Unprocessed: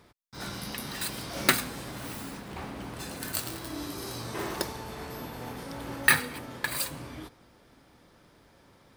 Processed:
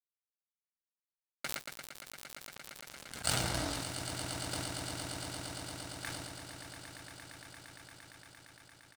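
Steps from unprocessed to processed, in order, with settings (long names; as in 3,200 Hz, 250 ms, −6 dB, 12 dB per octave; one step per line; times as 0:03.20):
source passing by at 0:03.53, 10 m/s, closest 1.5 metres
Butterworth low-pass 9,400 Hz 48 dB per octave
comb filter 1.4 ms, depth 60%
pitch vibrato 11 Hz 58 cents
dead-zone distortion −44 dBFS
on a send: echo that builds up and dies away 115 ms, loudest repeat 8, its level −11 dB
on the sum: level that may fall only so fast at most 26 dB per second
level +7.5 dB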